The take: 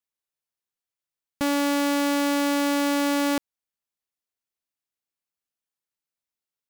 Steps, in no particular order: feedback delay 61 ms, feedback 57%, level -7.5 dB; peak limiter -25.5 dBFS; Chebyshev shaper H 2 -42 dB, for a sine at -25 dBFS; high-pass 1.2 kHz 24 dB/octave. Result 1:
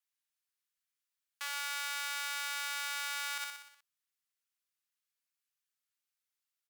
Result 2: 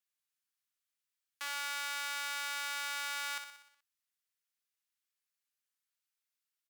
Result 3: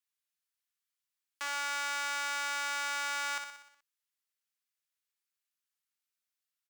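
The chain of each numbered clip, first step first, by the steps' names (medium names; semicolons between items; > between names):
feedback delay > peak limiter > Chebyshev shaper > high-pass; peak limiter > high-pass > Chebyshev shaper > feedback delay; high-pass > Chebyshev shaper > feedback delay > peak limiter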